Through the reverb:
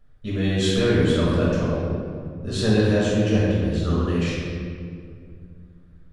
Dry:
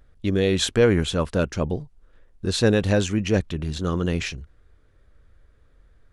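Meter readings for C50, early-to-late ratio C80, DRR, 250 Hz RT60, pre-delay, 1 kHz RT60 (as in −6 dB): −2.5 dB, −0.5 dB, −8.0 dB, 3.0 s, 6 ms, 2.0 s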